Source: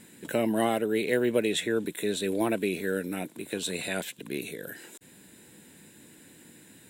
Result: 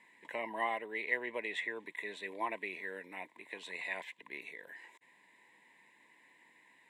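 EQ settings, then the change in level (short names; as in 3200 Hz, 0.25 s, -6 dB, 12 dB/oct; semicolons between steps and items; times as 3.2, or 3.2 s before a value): double band-pass 1400 Hz, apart 0.98 oct; +3.5 dB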